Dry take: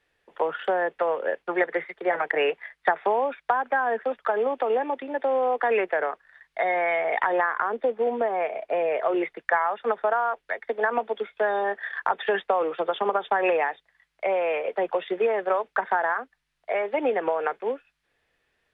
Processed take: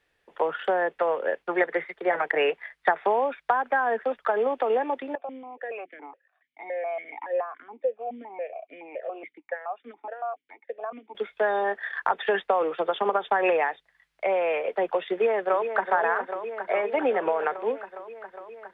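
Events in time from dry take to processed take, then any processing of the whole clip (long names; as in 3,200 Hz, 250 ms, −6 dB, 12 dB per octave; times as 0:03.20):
0:05.15–0:11.15: formant filter that steps through the vowels 7.1 Hz
0:15.12–0:15.92: delay throw 410 ms, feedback 80%, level −8 dB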